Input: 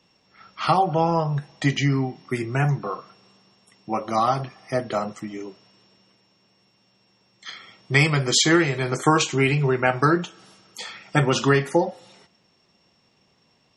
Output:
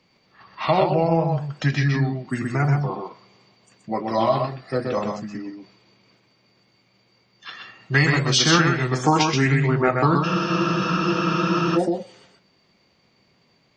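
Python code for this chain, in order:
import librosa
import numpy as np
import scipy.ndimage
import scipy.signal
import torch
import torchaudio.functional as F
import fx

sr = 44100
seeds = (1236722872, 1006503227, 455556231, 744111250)

y = x + 10.0 ** (-4.0 / 20.0) * np.pad(x, (int(126 * sr / 1000.0), 0))[:len(x)]
y = fx.formant_shift(y, sr, semitones=-3)
y = fx.spec_freeze(y, sr, seeds[0], at_s=10.26, hold_s=1.5)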